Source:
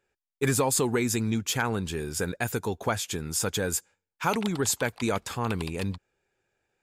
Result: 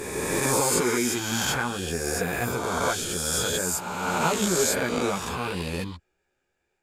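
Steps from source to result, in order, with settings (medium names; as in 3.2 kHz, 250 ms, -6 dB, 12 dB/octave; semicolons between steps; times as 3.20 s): reverse spectral sustain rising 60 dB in 2.02 s; chorus voices 6, 0.94 Hz, delay 14 ms, depth 3 ms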